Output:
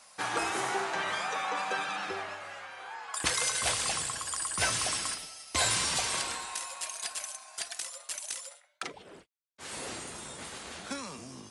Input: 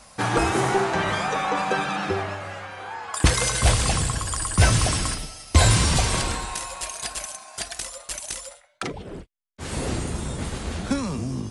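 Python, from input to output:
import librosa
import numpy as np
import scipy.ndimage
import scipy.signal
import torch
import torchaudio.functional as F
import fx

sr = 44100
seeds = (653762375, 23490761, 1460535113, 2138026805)

y = fx.highpass(x, sr, hz=970.0, slope=6)
y = y * librosa.db_to_amplitude(-5.0)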